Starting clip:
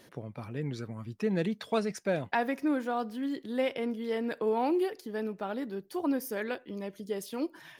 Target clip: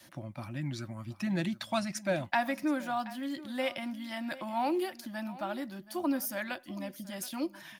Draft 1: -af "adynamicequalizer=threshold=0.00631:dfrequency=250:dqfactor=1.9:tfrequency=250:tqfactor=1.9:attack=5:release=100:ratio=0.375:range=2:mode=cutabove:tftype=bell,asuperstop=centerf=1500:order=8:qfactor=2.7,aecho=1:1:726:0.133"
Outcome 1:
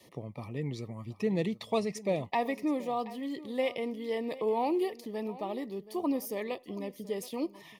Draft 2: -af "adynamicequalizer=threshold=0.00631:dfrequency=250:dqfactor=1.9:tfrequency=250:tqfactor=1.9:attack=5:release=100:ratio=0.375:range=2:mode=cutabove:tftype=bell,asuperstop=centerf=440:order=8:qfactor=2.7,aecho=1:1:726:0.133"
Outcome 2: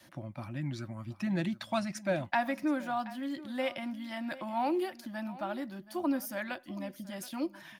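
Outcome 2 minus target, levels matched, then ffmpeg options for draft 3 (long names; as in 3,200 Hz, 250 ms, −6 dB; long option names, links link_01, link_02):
8,000 Hz band −4.5 dB
-af "adynamicequalizer=threshold=0.00631:dfrequency=250:dqfactor=1.9:tfrequency=250:tqfactor=1.9:attack=5:release=100:ratio=0.375:range=2:mode=cutabove:tftype=bell,asuperstop=centerf=440:order=8:qfactor=2.7,highshelf=frequency=3500:gain=6,aecho=1:1:726:0.133"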